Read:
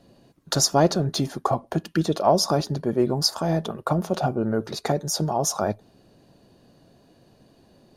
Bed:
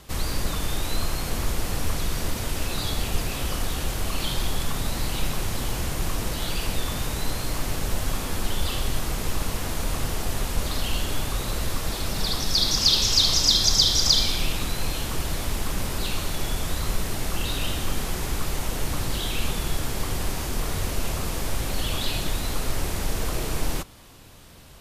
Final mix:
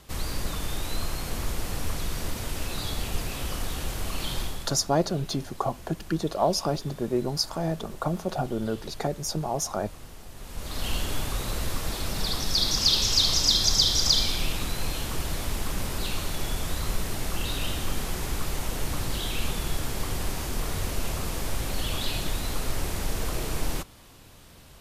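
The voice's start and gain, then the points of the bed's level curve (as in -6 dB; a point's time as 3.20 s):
4.15 s, -5.0 dB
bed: 4.40 s -4 dB
4.86 s -17.5 dB
10.34 s -17.5 dB
10.87 s -2.5 dB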